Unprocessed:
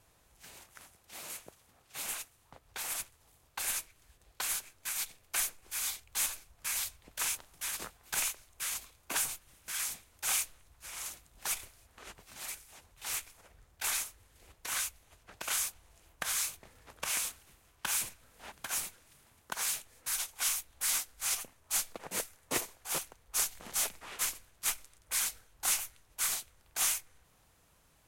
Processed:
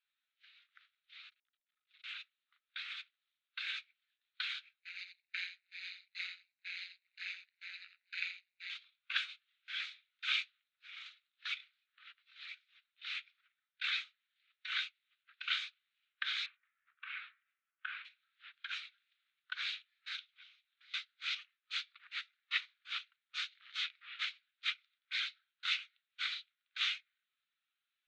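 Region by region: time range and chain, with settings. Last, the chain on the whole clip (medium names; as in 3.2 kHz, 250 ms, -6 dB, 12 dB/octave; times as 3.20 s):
1.29–2.04 s: compression, threshold -51 dBFS + comb 5.5 ms, depth 50% + transformer saturation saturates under 2.8 kHz
4.80–8.70 s: comb filter that takes the minimum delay 0.46 ms + AM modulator 180 Hz, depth 60% + delay 84 ms -6 dB
16.46–18.05 s: CVSD coder 64 kbps + low-pass 1.8 kHz + de-hum 69.41 Hz, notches 35
20.19–20.94 s: peaking EQ 7.6 kHz -4.5 dB 0.87 oct + compression, threshold -48 dBFS
whole clip: Chebyshev band-pass 1.3–3.9 kHz, order 3; tilt EQ +4 dB/octave; spectral contrast expander 1.5:1; trim -1.5 dB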